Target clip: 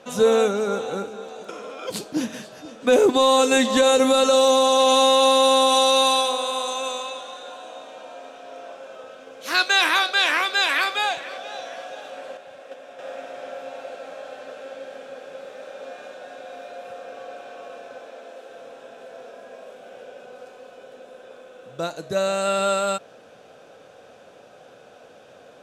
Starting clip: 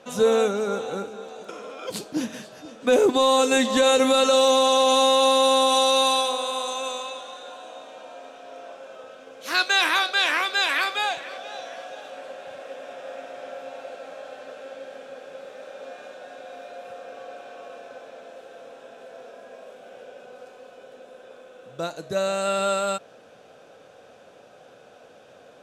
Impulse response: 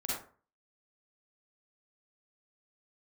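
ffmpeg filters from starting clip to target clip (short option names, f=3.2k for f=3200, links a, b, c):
-filter_complex "[0:a]asettb=1/sr,asplit=3[a][b][c];[a]atrim=end=3.814[d];[b]atrim=start=3.81:end=4.79,asetpts=PTS-STARTPTS,afade=t=in:d=0.004:c=qsin,afade=t=out:st=0.976:d=0.004:c=qsin,equalizer=f=2.4k:t=o:w=1.6:g=-3.5[e];[c]atrim=start=4.786[f];[d][e]acrossfade=d=0.004:c1=hsin:c2=qsin[g];[g][f]acrossfade=d=0.004:c1=qsin:c2=hsin,asettb=1/sr,asplit=3[h][i][j];[h]atrim=end=12.374[k];[i]atrim=start=12.37:end=12.99,asetpts=PTS-STARTPTS,afade=t=in:d=0.004:c=qsin,afade=t=out:st=0.616:d=0.004:c=qsin,agate=range=-6dB:threshold=-35dB:ratio=16:detection=peak[l];[j]atrim=start=12.986[m];[k][l]acrossfade=d=0.004:c1=hsin:c2=qsin[n];[n][m]acrossfade=d=0.004:c1=qsin:c2=hsin,asettb=1/sr,asplit=3[o][p][q];[o]atrim=end=18.064[r];[p]atrim=start=18.06:end=18.5,asetpts=PTS-STARTPTS,afade=t=in:d=0.004:c=qsin,afade=t=out:st=0.436:d=0.004:c=qsin,highpass=f=210:w=0.5412,highpass=f=210:w=1.3066[s];[q]atrim=start=18.496[t];[r][s]acrossfade=d=0.004:c1=hsin:c2=qsin[u];[u][t]acrossfade=d=0.004:c1=qsin:c2=hsin,volume=2dB"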